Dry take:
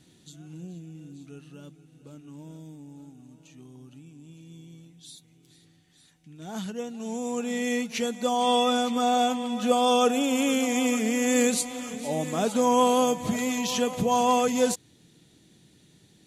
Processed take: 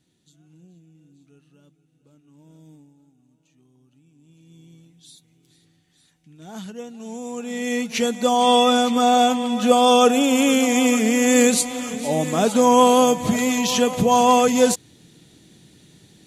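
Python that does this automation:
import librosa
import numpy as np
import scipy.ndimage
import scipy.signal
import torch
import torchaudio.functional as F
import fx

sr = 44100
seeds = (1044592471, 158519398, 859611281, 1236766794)

y = fx.gain(x, sr, db=fx.line((2.27, -10.0), (2.75, -2.5), (2.96, -11.0), (3.91, -11.0), (4.66, -1.0), (7.41, -1.0), (8.01, 7.0)))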